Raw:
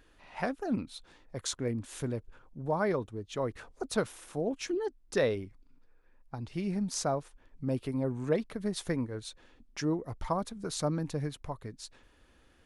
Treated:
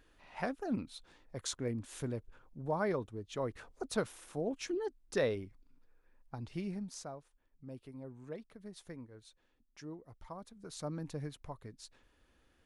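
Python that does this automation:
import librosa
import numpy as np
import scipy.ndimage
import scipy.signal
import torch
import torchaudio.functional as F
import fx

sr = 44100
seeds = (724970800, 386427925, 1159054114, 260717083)

y = fx.gain(x, sr, db=fx.line((6.56, -4.0), (7.13, -16.0), (10.33, -16.0), (11.07, -7.0)))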